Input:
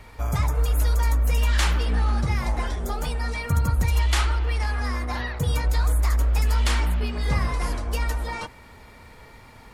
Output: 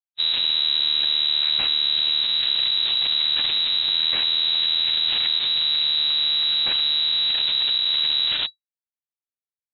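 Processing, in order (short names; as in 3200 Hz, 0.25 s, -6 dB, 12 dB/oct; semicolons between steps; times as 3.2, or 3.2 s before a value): Schmitt trigger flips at -29 dBFS; formant-preserving pitch shift -7.5 st; inverted band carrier 3900 Hz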